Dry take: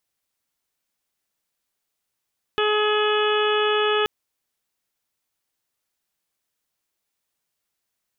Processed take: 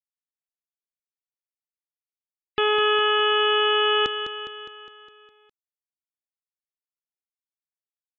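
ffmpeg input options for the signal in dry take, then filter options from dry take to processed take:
-f lavfi -i "aevalsrc='0.0944*sin(2*PI*423*t)+0.0355*sin(2*PI*846*t)+0.0562*sin(2*PI*1269*t)+0.0376*sin(2*PI*1692*t)+0.00944*sin(2*PI*2115*t)+0.0316*sin(2*PI*2538*t)+0.0376*sin(2*PI*2961*t)+0.0299*sin(2*PI*3384*t)':duration=1.48:sample_rate=44100"
-af "afftfilt=real='re*gte(hypot(re,im),0.00631)':imag='im*gte(hypot(re,im),0.00631)':win_size=1024:overlap=0.75,aecho=1:1:205|410|615|820|1025|1230|1435:0.355|0.206|0.119|0.0692|0.0402|0.0233|0.0135"

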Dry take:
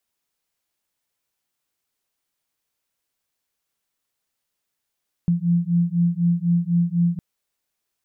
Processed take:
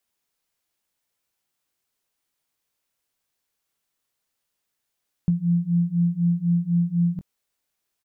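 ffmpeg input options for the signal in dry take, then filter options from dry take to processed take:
-f lavfi -i "aevalsrc='0.1*(sin(2*PI*170*t)+sin(2*PI*174*t))':duration=1.91:sample_rate=44100"
-filter_complex "[0:a]asplit=2[link_01][link_02];[link_02]adelay=21,volume=-12dB[link_03];[link_01][link_03]amix=inputs=2:normalize=0"

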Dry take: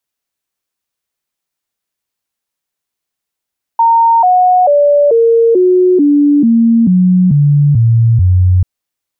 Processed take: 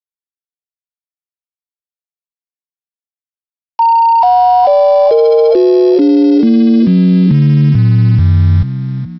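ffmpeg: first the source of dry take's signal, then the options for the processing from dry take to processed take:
-f lavfi -i "aevalsrc='0.562*clip(min(mod(t,0.44),0.44-mod(t,0.44))/0.005,0,1)*sin(2*PI*920*pow(2,-floor(t/0.44)/3)*mod(t,0.44))':duration=4.84:sample_rate=44100"
-filter_complex "[0:a]aresample=11025,aeval=exprs='val(0)*gte(abs(val(0)),0.0841)':channel_layout=same,aresample=44100,asplit=5[link_01][link_02][link_03][link_04][link_05];[link_02]adelay=419,afreqshift=40,volume=-10dB[link_06];[link_03]adelay=838,afreqshift=80,volume=-18.2dB[link_07];[link_04]adelay=1257,afreqshift=120,volume=-26.4dB[link_08];[link_05]adelay=1676,afreqshift=160,volume=-34.5dB[link_09];[link_01][link_06][link_07][link_08][link_09]amix=inputs=5:normalize=0"

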